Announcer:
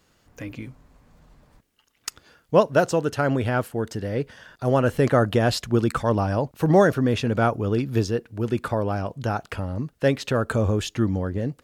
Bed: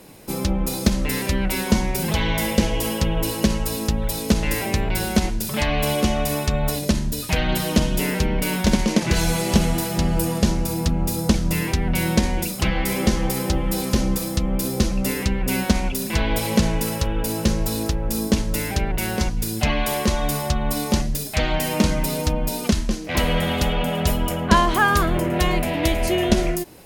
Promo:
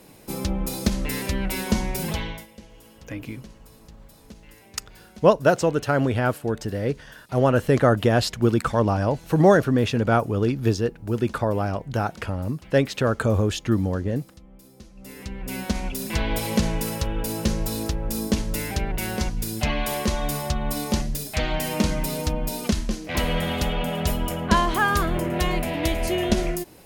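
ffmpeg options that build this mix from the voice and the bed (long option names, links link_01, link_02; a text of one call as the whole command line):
ffmpeg -i stem1.wav -i stem2.wav -filter_complex "[0:a]adelay=2700,volume=1dB[link_01];[1:a]volume=19dB,afade=type=out:start_time=2.06:duration=0.4:silence=0.0749894,afade=type=in:start_time=14.94:duration=1.21:silence=0.0707946[link_02];[link_01][link_02]amix=inputs=2:normalize=0" out.wav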